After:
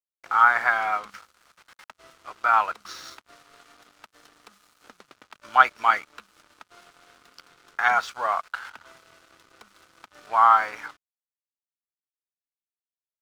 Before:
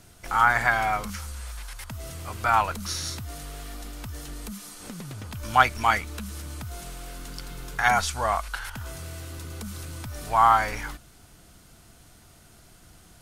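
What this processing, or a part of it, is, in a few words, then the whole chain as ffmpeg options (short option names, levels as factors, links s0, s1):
pocket radio on a weak battery: -filter_complex "[0:a]asettb=1/sr,asplit=3[s0][s1][s2];[s0]atrim=end=3.514[s3];[s1]atrim=start=3.51:end=5.22,asetpts=PTS-STARTPTS,afade=t=in:d=0.004:c=qsin,afade=t=out:st=1.706:d=0.004:c=qsin,highshelf=f=5200:g=2.5[s4];[s2]atrim=start=5.216[s5];[s3][s4]acrossfade=d=0.004:c1=hsin:c2=qsin[s6];[s6][s5]acrossfade=d=0.004:c1=qsin:c2=hsin,highpass=380,lowpass=4300,aeval=exprs='sgn(val(0))*max(abs(val(0))-0.00531,0)':c=same,equalizer=f=1300:t=o:w=0.57:g=7,volume=0.794"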